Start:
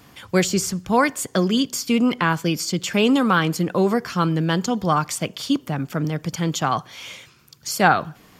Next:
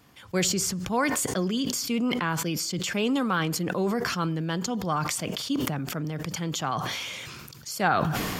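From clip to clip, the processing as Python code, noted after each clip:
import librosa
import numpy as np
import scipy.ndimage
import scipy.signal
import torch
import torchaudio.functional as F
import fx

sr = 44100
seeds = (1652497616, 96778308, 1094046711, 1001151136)

y = fx.sustainer(x, sr, db_per_s=23.0)
y = y * librosa.db_to_amplitude(-8.5)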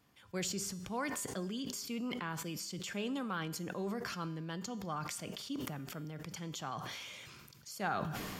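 y = fx.comb_fb(x, sr, f0_hz=200.0, decay_s=1.0, harmonics='all', damping=0.0, mix_pct=60)
y = y * librosa.db_to_amplitude(-5.0)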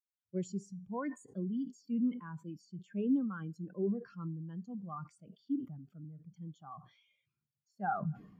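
y = fx.spectral_expand(x, sr, expansion=2.5)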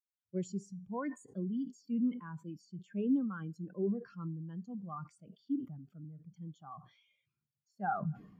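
y = x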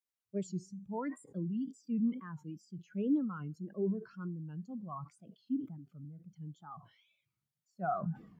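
y = fx.wow_flutter(x, sr, seeds[0], rate_hz=2.1, depth_cents=140.0)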